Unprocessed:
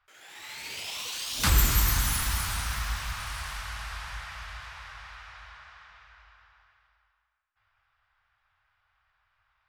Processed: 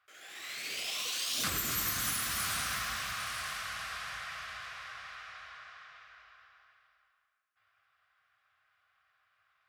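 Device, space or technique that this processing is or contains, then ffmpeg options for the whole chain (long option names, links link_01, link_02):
PA system with an anti-feedback notch: -af "highpass=180,asuperstop=centerf=900:order=4:qfactor=4.4,alimiter=limit=-22dB:level=0:latency=1:release=404"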